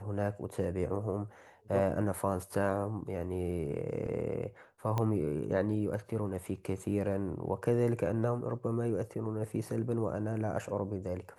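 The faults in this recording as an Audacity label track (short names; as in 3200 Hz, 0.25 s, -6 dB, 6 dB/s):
4.980000	4.980000	pop -19 dBFS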